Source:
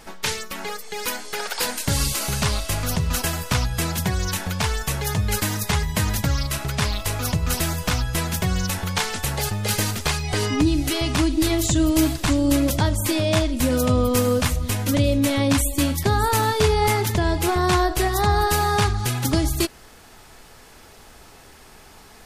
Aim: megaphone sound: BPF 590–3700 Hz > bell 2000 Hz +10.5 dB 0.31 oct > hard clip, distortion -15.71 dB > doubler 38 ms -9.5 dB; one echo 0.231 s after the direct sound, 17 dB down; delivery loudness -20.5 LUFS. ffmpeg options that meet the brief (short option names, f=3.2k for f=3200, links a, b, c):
-filter_complex "[0:a]highpass=590,lowpass=3.7k,equalizer=f=2k:t=o:w=0.31:g=10.5,aecho=1:1:231:0.141,asoftclip=type=hard:threshold=-18.5dB,asplit=2[a][b];[b]adelay=38,volume=-9.5dB[c];[a][c]amix=inputs=2:normalize=0,volume=5.5dB"